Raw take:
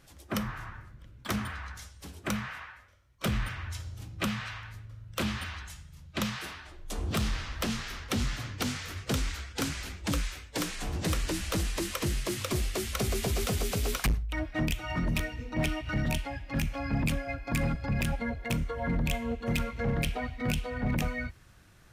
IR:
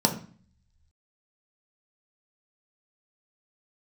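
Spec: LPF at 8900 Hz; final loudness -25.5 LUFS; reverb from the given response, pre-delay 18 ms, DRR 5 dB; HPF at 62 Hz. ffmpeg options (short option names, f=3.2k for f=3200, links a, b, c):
-filter_complex "[0:a]highpass=62,lowpass=8.9k,asplit=2[a][b];[1:a]atrim=start_sample=2205,adelay=18[c];[b][c]afir=irnorm=-1:irlink=0,volume=-17.5dB[d];[a][d]amix=inputs=2:normalize=0,volume=5dB"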